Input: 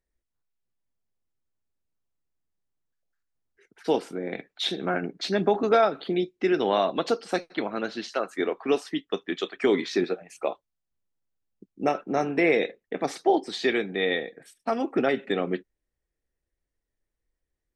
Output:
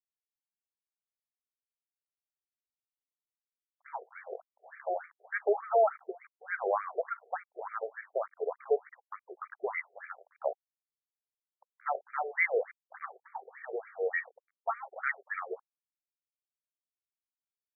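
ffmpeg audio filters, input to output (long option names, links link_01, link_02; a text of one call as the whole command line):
ffmpeg -i in.wav -filter_complex "[0:a]asplit=3[link_01][link_02][link_03];[link_01]afade=type=out:start_time=10.52:duration=0.02[link_04];[link_02]acompressor=threshold=-46dB:ratio=6,afade=type=in:start_time=10.52:duration=0.02,afade=type=out:start_time=11.85:duration=0.02[link_05];[link_03]afade=type=in:start_time=11.85:duration=0.02[link_06];[link_04][link_05][link_06]amix=inputs=3:normalize=0,aeval=exprs='val(0)*gte(abs(val(0)),0.00891)':channel_layout=same,crystalizer=i=5.5:c=0,afftfilt=real='re*between(b*sr/1024,520*pow(1700/520,0.5+0.5*sin(2*PI*3.4*pts/sr))/1.41,520*pow(1700/520,0.5+0.5*sin(2*PI*3.4*pts/sr))*1.41)':imag='im*between(b*sr/1024,520*pow(1700/520,0.5+0.5*sin(2*PI*3.4*pts/sr))/1.41,520*pow(1700/520,0.5+0.5*sin(2*PI*3.4*pts/sr))*1.41)':win_size=1024:overlap=0.75,volume=-3.5dB" out.wav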